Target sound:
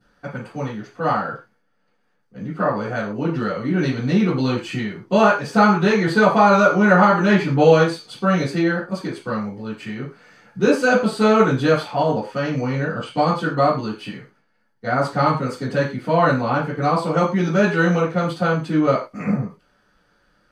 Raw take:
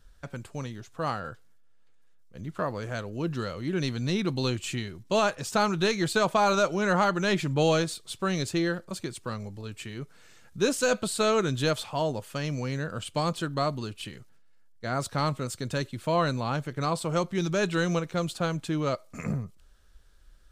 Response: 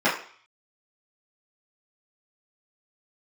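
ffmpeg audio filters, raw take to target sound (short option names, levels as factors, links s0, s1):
-filter_complex "[0:a]asettb=1/sr,asplit=3[s0][s1][s2];[s0]atrim=end=12.094[s3];[s1]atrim=start=12.09:end=13.37,asetpts=PTS-STARTPTS,afade=t=in:d=0.004:c=qsin,afade=t=out:st=1.276:d=0.004:c=qsin,equalizer=f=12000:w=2.5:g=-13.5[s4];[s2]atrim=start=13.366[s5];[s3][s4]acrossfade=d=0.004:c1=hsin:c2=qsin[s6];[s6][s5]acrossfade=d=0.004:c1=qsin:c2=hsin[s7];[1:a]atrim=start_sample=2205,afade=t=out:st=0.17:d=0.01,atrim=end_sample=7938,asetrate=39690,aresample=44100[s8];[s7][s8]afir=irnorm=-1:irlink=0,volume=0.355"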